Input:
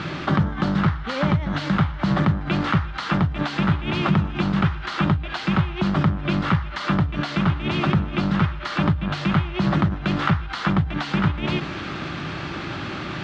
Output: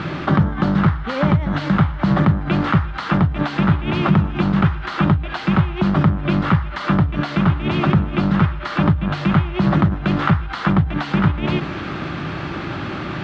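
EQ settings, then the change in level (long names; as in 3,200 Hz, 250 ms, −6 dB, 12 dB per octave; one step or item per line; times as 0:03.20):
high-shelf EQ 2,900 Hz −9 dB
+4.5 dB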